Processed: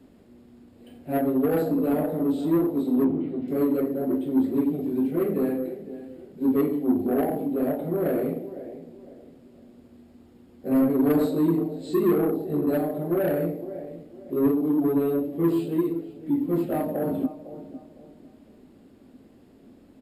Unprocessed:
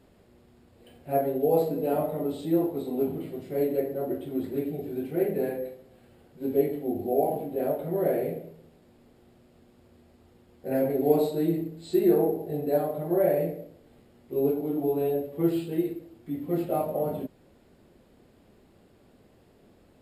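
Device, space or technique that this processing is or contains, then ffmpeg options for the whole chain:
one-band saturation: -filter_complex "[0:a]asettb=1/sr,asplit=3[link_01][link_02][link_03];[link_01]atrim=end=3.044[link_04];[link_02]atrim=start=3.04:end=3.48,asetpts=PTS-STARTPTS,afade=type=in:duration=0.004:curve=qsin,afade=type=out:start_time=0.436:duration=0.004:curve=qsin,lowpass=2400[link_05];[link_03]atrim=start=3.476[link_06];[link_04][link_05]acrossfade=duration=0.004:curve1=hsin:curve2=qsin[link_07];[link_07][link_06]acrossfade=duration=0.004:curve1=qsin:curve2=hsin,equalizer=frequency=260:width=2:gain=12,asplit=2[link_08][link_09];[link_09]adelay=507,lowpass=frequency=2500:poles=1,volume=-15dB,asplit=2[link_10][link_11];[link_11]adelay=507,lowpass=frequency=2500:poles=1,volume=0.32,asplit=2[link_12][link_13];[link_13]adelay=507,lowpass=frequency=2500:poles=1,volume=0.32[link_14];[link_08][link_10][link_12][link_14]amix=inputs=4:normalize=0,acrossover=split=250|3600[link_15][link_16][link_17];[link_16]asoftclip=type=tanh:threshold=-21dB[link_18];[link_15][link_18][link_17]amix=inputs=3:normalize=0"

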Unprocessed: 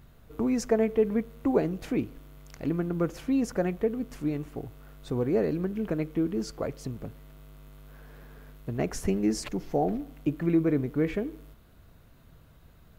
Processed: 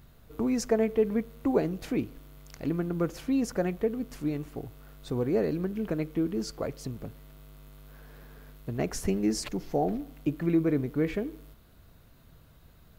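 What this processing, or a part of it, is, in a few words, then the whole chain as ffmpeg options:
presence and air boost: -af "equalizer=frequency=4400:width_type=o:width=0.77:gain=3,highshelf=frequency=9000:gain=5,volume=-1dB"

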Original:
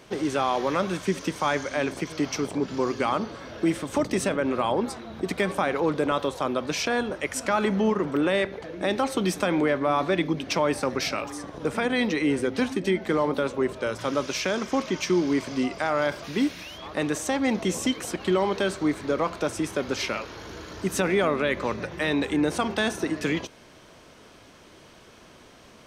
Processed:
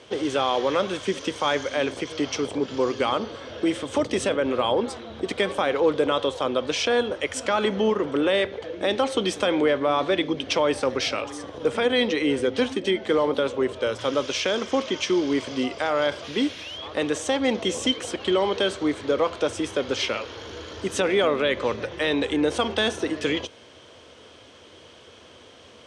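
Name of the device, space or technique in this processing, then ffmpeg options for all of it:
car door speaker: -af "highpass=80,equalizer=frequency=84:width_type=q:width=4:gain=8,equalizer=frequency=170:width_type=q:width=4:gain=-10,equalizer=frequency=490:width_type=q:width=4:gain=7,equalizer=frequency=3200:width_type=q:width=4:gain=9,lowpass=frequency=9400:width=0.5412,lowpass=frequency=9400:width=1.3066"

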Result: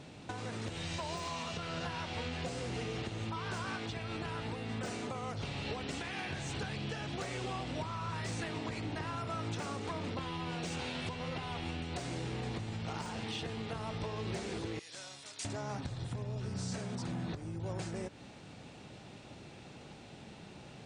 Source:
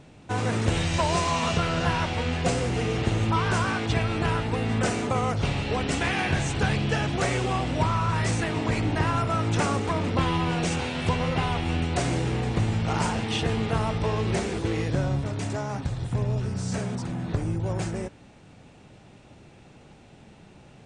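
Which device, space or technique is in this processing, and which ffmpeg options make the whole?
broadcast voice chain: -filter_complex "[0:a]asettb=1/sr,asplit=3[link_01][link_02][link_03];[link_01]atrim=end=14.794[link_04];[link_02]atrim=start=14.79:end=15.45,asetpts=PTS-STARTPTS,afade=type=in:duration=0.004:curve=qsin,afade=type=out:start_time=0.656:duration=0.004:curve=qsin,aderivative[link_05];[link_03]atrim=start=15.446[link_06];[link_04][link_05]acrossfade=duration=0.004:curve1=hsin:curve2=qsin[link_07];[link_07][link_06]acrossfade=duration=0.004:curve1=qsin:curve2=hsin,highpass=frequency=88:poles=1,deesser=0.7,acompressor=threshold=-35dB:ratio=4,equalizer=frequency=4200:width_type=o:width=0.92:gain=5,alimiter=level_in=4.5dB:limit=-24dB:level=0:latency=1:release=452,volume=-4.5dB"

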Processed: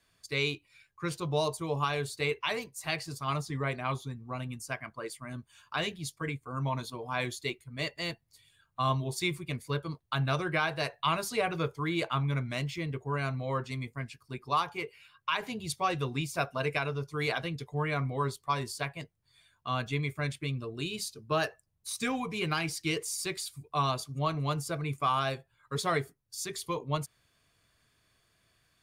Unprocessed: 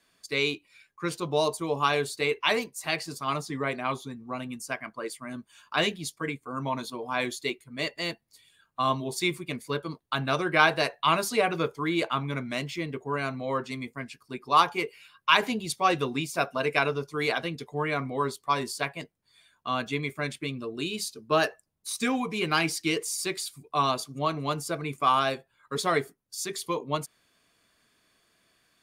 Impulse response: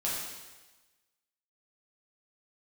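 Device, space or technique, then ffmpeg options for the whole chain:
car stereo with a boomy subwoofer: -filter_complex "[0:a]asettb=1/sr,asplit=3[link_01][link_02][link_03];[link_01]atrim=end=14.774[link_04];[link_02]atrim=start=14.77:end=15.41,asetpts=PTS-STARTPTS,afade=type=in:duration=0.004:curve=qsin,afade=type=out:start_time=0.636:duration=0.004:curve=qsin,bass=frequency=250:gain=-3,treble=frequency=4000:gain=-4[link_05];[link_03]atrim=start=15.406[link_06];[link_04][link_05]acrossfade=duration=0.004:curve1=hsin:curve2=qsin[link_07];[link_07][link_06]acrossfade=duration=0.004:curve1=qsin:curve2=hsin,lowshelf=frequency=160:width_type=q:width=1.5:gain=9,alimiter=limit=-14dB:level=0:latency=1:release=363,volume=-3.5dB"

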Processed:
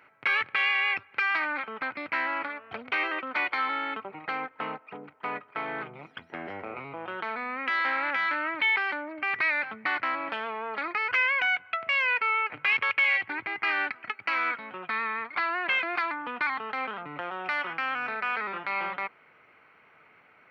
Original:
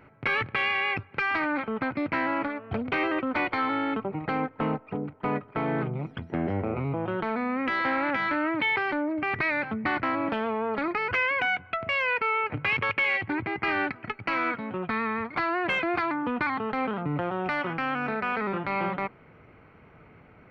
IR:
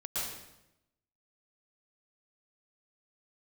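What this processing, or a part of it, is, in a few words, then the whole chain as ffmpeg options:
filter by subtraction: -filter_complex "[0:a]asettb=1/sr,asplit=3[link_01][link_02][link_03];[link_01]atrim=end=15.044[link_04];[link_02]atrim=start=15.04:end=15.79,asetpts=PTS-STARTPTS,afade=type=in:duration=0.004:curve=qsin,afade=type=out:start_time=0.746:duration=0.004:curve=qsin,lowpass=frequency=5100:width=0.5412,lowpass=frequency=5100:width=1.3066[link_05];[link_03]atrim=start=15.786[link_06];[link_04][link_05]acrossfade=duration=0.004:curve1=hsin:curve2=qsin[link_07];[link_07][link_06]acrossfade=duration=0.004:curve1=qsin:curve2=hsin,asplit=2[link_08][link_09];[link_09]lowpass=1900,volume=-1[link_10];[link_08][link_10]amix=inputs=2:normalize=0"

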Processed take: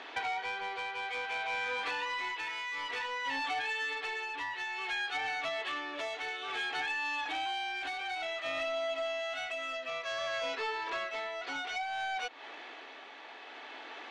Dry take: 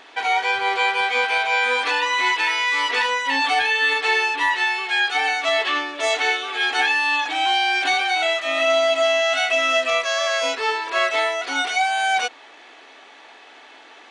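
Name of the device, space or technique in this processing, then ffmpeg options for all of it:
AM radio: -filter_complex "[0:a]highpass=160,lowpass=4400,acompressor=threshold=-30dB:ratio=10,asoftclip=type=tanh:threshold=-27dB,tremolo=f=0.57:d=0.34,asettb=1/sr,asplit=3[link_01][link_02][link_03];[link_01]atrim=end=9.734[link_04];[link_02]atrim=start=9.73:end=11.78,asetpts=PTS-STARTPTS,afade=type=in:duration=0.004:curve=qsin,afade=type=out:start_time=2.046:duration=0.004:curve=qsin,lowpass=frequency=8500:width=0.5412,lowpass=frequency=8500:width=1.3066[link_05];[link_03]atrim=start=11.776[link_06];[link_04][link_05]acrossfade=duration=0.004:curve1=hsin:curve2=qsin[link_07];[link_07][link_06]acrossfade=duration=0.004:curve1=qsin:curve2=hsin"

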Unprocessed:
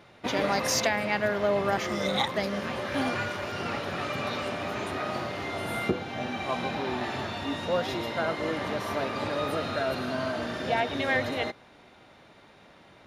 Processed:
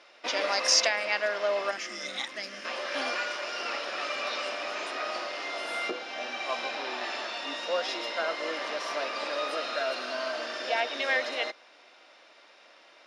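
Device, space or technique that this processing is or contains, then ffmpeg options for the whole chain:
phone speaker on a table: -filter_complex "[0:a]asettb=1/sr,asplit=3[link_01][link_02][link_03];[link_01]atrim=end=1.714[link_04];[link_02]atrim=start=1.71:end=2.65,asetpts=PTS-STARTPTS,afade=type=in:duration=0.004:curve=qsin,afade=type=out:start_time=0.936:duration=0.004:curve=qsin,equalizer=frequency=250:width_type=o:width=1:gain=4,equalizer=frequency=500:width_type=o:width=1:gain=-11,equalizer=frequency=1000:width_type=o:width=1:gain=-10,equalizer=frequency=4000:width_type=o:width=1:gain=-7[link_05];[link_03]atrim=start=2.646[link_06];[link_04][link_05]acrossfade=duration=0.004:curve1=hsin:curve2=qsin[link_07];[link_07][link_06]acrossfade=duration=0.004:curve1=qsin:curve2=hsin,highpass=frequency=380:width=0.5412,highpass=frequency=380:width=1.3066,equalizer=frequency=410:width_type=q:width=4:gain=-8,equalizer=frequency=840:width_type=q:width=4:gain=-5,equalizer=frequency=2700:width_type=q:width=4:gain=4,equalizer=frequency=5200:width_type=q:width=4:gain=10,lowpass=frequency=8800:width=0.5412,lowpass=frequency=8800:width=1.3066"

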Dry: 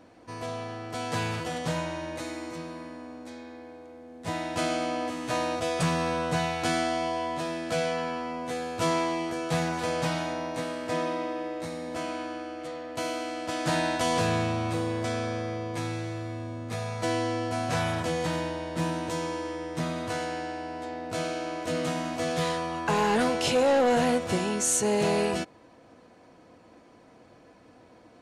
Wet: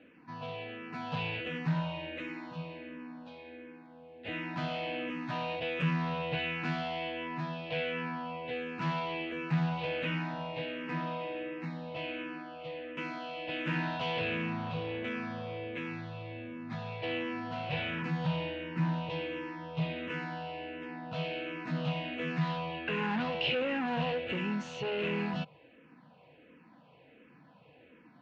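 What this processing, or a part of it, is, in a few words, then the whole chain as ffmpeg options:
barber-pole phaser into a guitar amplifier: -filter_complex "[0:a]asplit=2[link_01][link_02];[link_02]afreqshift=-1.4[link_03];[link_01][link_03]amix=inputs=2:normalize=1,asoftclip=type=tanh:threshold=-27dB,highpass=96,equalizer=frequency=100:width_type=q:width=4:gain=-9,equalizer=frequency=150:width_type=q:width=4:gain=10,equalizer=frequency=360:width_type=q:width=4:gain=-7,equalizer=frequency=670:width_type=q:width=4:gain=-6,equalizer=frequency=1200:width_type=q:width=4:gain=-5,equalizer=frequency=2700:width_type=q:width=4:gain=9,lowpass=frequency=3400:width=0.5412,lowpass=frequency=3400:width=1.3066"

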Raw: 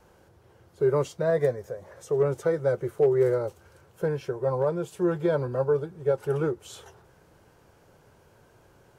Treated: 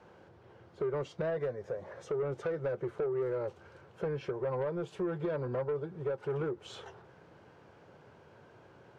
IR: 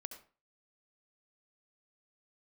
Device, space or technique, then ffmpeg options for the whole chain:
AM radio: -af "highpass=110,lowpass=3600,acompressor=threshold=-30dB:ratio=5,asoftclip=type=tanh:threshold=-28.5dB,volume=1.5dB"

